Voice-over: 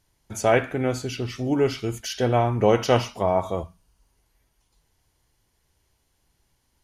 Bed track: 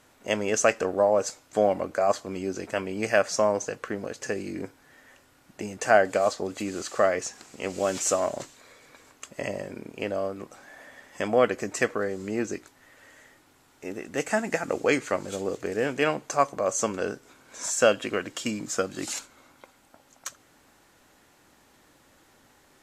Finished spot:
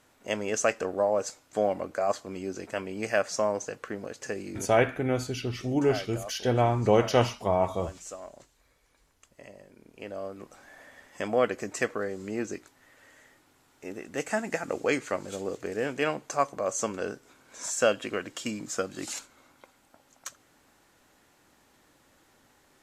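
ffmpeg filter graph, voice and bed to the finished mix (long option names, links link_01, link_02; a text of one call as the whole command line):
ffmpeg -i stem1.wav -i stem2.wav -filter_complex "[0:a]adelay=4250,volume=-3dB[link_01];[1:a]volume=9.5dB,afade=type=out:start_time=4.6:duration=0.23:silence=0.223872,afade=type=in:start_time=9.76:duration=0.85:silence=0.211349[link_02];[link_01][link_02]amix=inputs=2:normalize=0" out.wav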